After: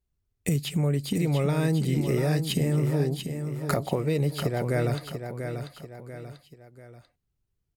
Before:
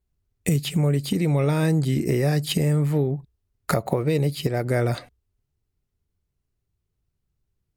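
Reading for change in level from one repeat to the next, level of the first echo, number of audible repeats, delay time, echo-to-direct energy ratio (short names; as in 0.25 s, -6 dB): -7.5 dB, -7.5 dB, 3, 0.69 s, -6.5 dB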